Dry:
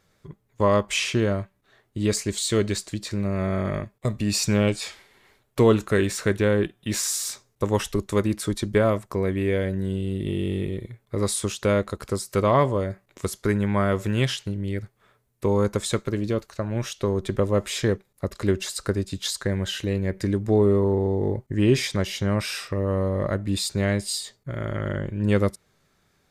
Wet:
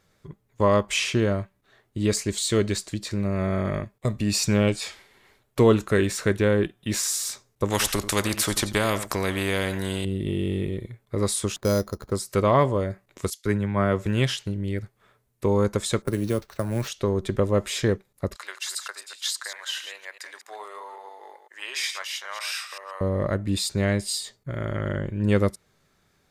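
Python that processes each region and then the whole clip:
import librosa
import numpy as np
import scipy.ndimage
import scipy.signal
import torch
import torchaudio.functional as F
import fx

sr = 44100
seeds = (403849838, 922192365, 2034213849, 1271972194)

y = fx.chain(x, sr, fx.echo_single(ms=88, db=-20.5),
    fx.spectral_comp(ratio=2.0), at=(7.7, 10.05))
y = fx.chain(y, sr, fx.median_filter(points=15),
    fx.air_absorb(metres=450.0),
    fx.resample_bad(factor=8, down='none', up='hold'), at=(11.56, 12.12))
y = fx.chain(y, sr, fx.high_shelf(hz=8400.0, db=-5.0),
    fx.band_widen(depth_pct=100), at=(13.3, 14.06))
y = fx.chain(y, sr, fx.env_lowpass(base_hz=800.0, full_db=-23.0),
    fx.sample_hold(seeds[0], rate_hz=10000.0, jitter_pct=0),
    fx.band_squash(depth_pct=40), at=(16.02, 16.88))
y = fx.chain(y, sr, fx.reverse_delay(ms=130, wet_db=-9),
    fx.highpass(hz=890.0, slope=24), at=(18.36, 23.01))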